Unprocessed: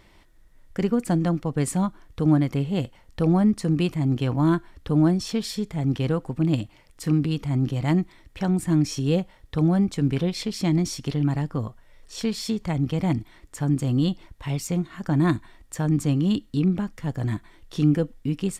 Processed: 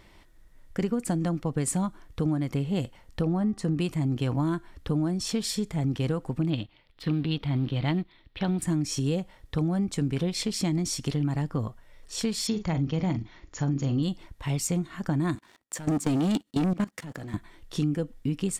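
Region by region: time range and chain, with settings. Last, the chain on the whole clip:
3.21–3.79 high shelf 5500 Hz -10 dB + notch 2300 Hz, Q 11 + de-hum 386.5 Hz, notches 10
6.5–8.62 G.711 law mismatch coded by A + resonant high shelf 5200 Hz -12.5 dB, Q 3
12.47–14.03 brick-wall FIR low-pass 7200 Hz + doubler 43 ms -10 dB
15.35–17.34 HPF 190 Hz + sample leveller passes 3 + level quantiser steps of 19 dB
whole clip: dynamic EQ 8200 Hz, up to +6 dB, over -52 dBFS, Q 1.2; compressor, threshold -23 dBFS

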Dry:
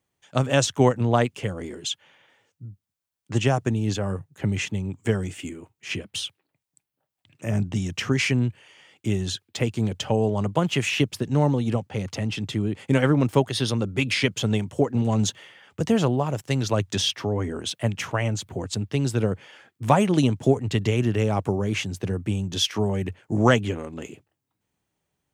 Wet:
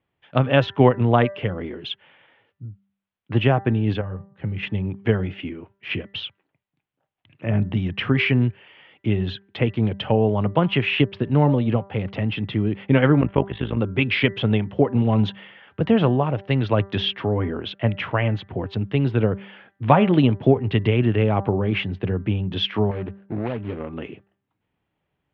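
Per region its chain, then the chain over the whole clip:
4.01–4.63 low shelf 95 Hz +11.5 dB + resonator 170 Hz, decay 0.36 s, harmonics odd, mix 70%
13.21–13.77 steep low-pass 3200 Hz + AM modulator 52 Hz, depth 80%
22.91–23.8 median filter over 41 samples + low shelf 340 Hz -6.5 dB + compressor, threshold -25 dBFS
whole clip: steep low-pass 3300 Hz 36 dB/oct; de-hum 196.9 Hz, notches 10; gain +3.5 dB

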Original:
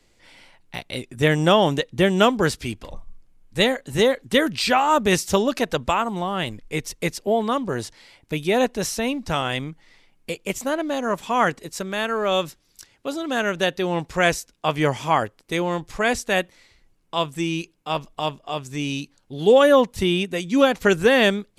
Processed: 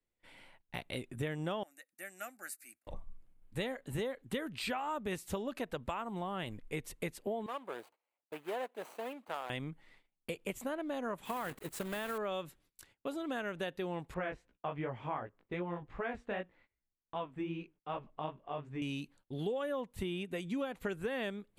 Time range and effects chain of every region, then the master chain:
1.63–2.87 differentiator + fixed phaser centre 660 Hz, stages 8
7.46–9.5 median filter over 25 samples + HPF 650 Hz
11.25–12.18 block floating point 3-bit + compressor, threshold -20 dBFS
14.14–18.82 LPF 2200 Hz + chorus 2.6 Hz, delay 16 ms, depth 5.4 ms
whole clip: gate -52 dBFS, range -21 dB; bell 5500 Hz -12.5 dB 0.82 oct; compressor 6:1, threshold -28 dBFS; gain -7 dB

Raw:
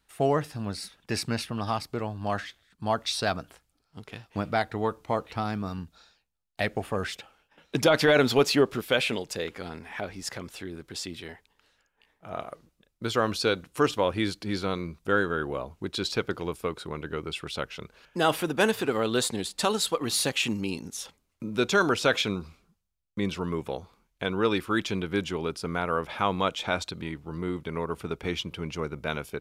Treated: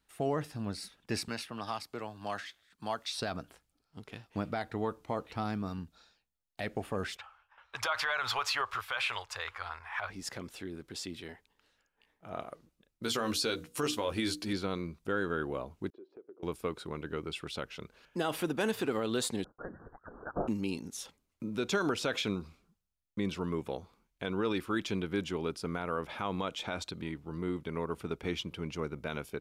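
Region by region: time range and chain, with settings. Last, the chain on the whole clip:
1.28–3.18 low shelf 410 Hz -12 dB + three-band squash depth 40%
7.17–10.1 EQ curve 100 Hz 0 dB, 160 Hz -24 dB, 270 Hz -28 dB, 1100 Hz +14 dB, 1900 Hz +7 dB, 12000 Hz -3 dB + mismatched tape noise reduction decoder only
13.03–14.53 high shelf 3400 Hz +10 dB + notches 60/120/180/240/300/360/420/480 Hz + doubler 13 ms -6.5 dB
15.9–16.43 expander -46 dBFS + ladder band-pass 410 Hz, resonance 65% + compressor 3:1, threshold -47 dBFS
19.44–20.48 steep high-pass 1600 Hz 96 dB/oct + expander -48 dBFS + inverted band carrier 3200 Hz
whole clip: limiter -17 dBFS; bell 270 Hz +3 dB 1.2 oct; gain -5.5 dB

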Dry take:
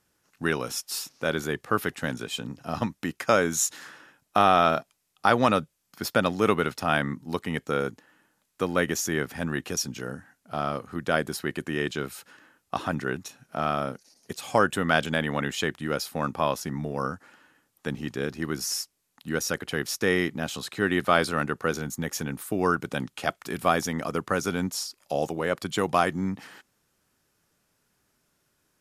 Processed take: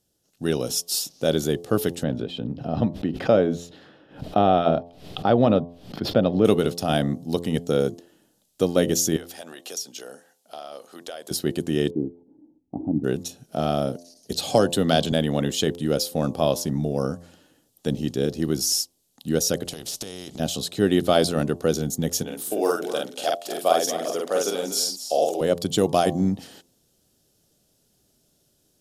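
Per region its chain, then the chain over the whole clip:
2.03–6.45 air absorption 400 m + backwards sustainer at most 120 dB/s
9.16–11.31 HPF 700 Hz + compressor 4:1, threshold -35 dBFS
11.9–13.04 vocal tract filter u + low shelf 460 Hz +10 dB
14.32–15.12 bell 4200 Hz +8 dB 0.41 oct + three-band squash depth 40%
19.65–20.4 LPF 8500 Hz + compressor 5:1, threshold -35 dBFS + spectral compressor 2:1
22.23–25.41 Chebyshev high-pass 530 Hz + doubler 47 ms -2 dB + echo 0.242 s -11.5 dB
whole clip: band shelf 1500 Hz -14 dB; de-hum 86.02 Hz, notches 13; AGC gain up to 7 dB

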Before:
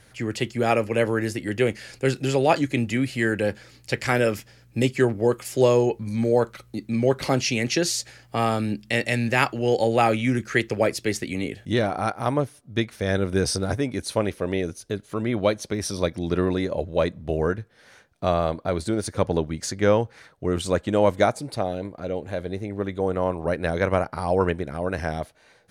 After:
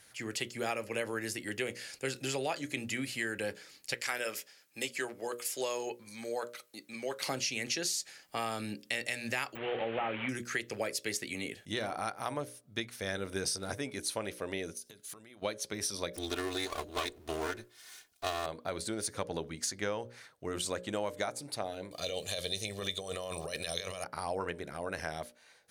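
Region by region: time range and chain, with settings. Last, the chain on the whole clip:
3.94–7.27 de-esser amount 30% + HPF 600 Hz 6 dB/oct
9.55–10.29 delta modulation 16 kbps, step -25.5 dBFS + de-esser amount 90%
14.77–15.42 high shelf 4200 Hz +11.5 dB + compressor 16:1, threshold -39 dBFS
16.13–18.46 minimum comb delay 2.8 ms + high shelf 3200 Hz +10 dB
21.91–24.04 resonant high shelf 2400 Hz +13.5 dB, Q 1.5 + comb 1.7 ms, depth 56% + negative-ratio compressor -27 dBFS
whole clip: tilt +2.5 dB/oct; notches 60/120/180/240/300/360/420/480/540/600 Hz; compressor 6:1, threshold -23 dBFS; gain -7.5 dB

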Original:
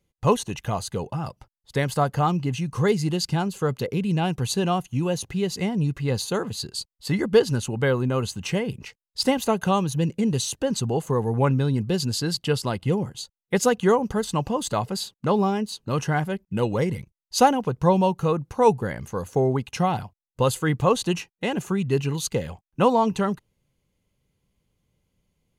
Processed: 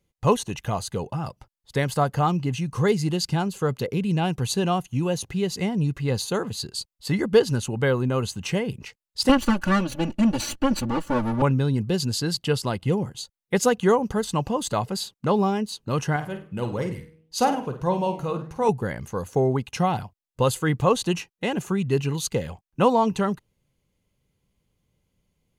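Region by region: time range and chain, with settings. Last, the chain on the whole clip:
9.29–11.42 minimum comb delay 0.69 ms + high shelf 7700 Hz -10 dB + comb 3.5 ms, depth 98%
16.16–18.69 flange 1.7 Hz, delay 5.8 ms, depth 8.4 ms, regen +86% + de-hum 159.2 Hz, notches 3 + flutter echo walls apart 8.6 m, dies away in 0.34 s
whole clip: dry

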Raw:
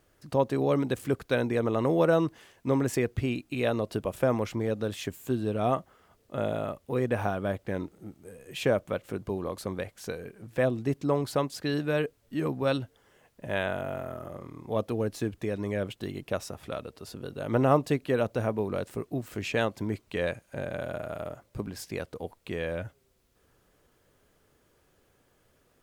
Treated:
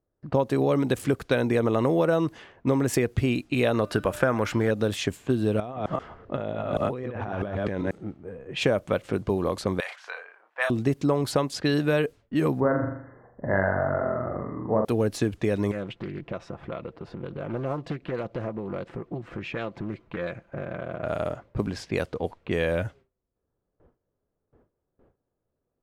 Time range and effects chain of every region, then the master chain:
3.74–4.71 bell 1500 Hz +11 dB 0.7 oct + de-hum 298.9 Hz, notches 18
5.6–7.91 reverse delay 0.13 s, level -5 dB + negative-ratio compressor -38 dBFS + air absorption 51 m
9.8–10.7 HPF 870 Hz 24 dB/oct + doubler 34 ms -7 dB + sustainer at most 83 dB/s
12.6–14.85 brick-wall FIR low-pass 2100 Hz + flutter echo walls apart 7.1 m, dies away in 0.59 s
15.71–21.03 compressor 3:1, threshold -40 dBFS + comb 5.9 ms, depth 41% + Doppler distortion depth 0.48 ms
whole clip: compressor, threshold -27 dBFS; low-pass opened by the level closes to 780 Hz, open at -30 dBFS; gate with hold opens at -57 dBFS; gain +8 dB

